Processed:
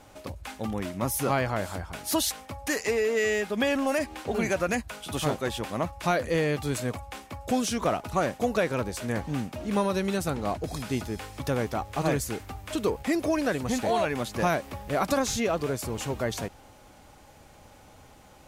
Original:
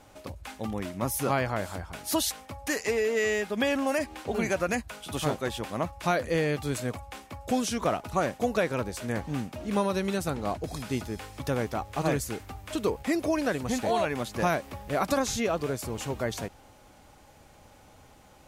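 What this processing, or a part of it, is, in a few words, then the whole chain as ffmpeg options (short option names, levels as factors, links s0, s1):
parallel distortion: -filter_complex "[0:a]asplit=2[s0][s1];[s1]asoftclip=type=hard:threshold=0.0282,volume=0.282[s2];[s0][s2]amix=inputs=2:normalize=0"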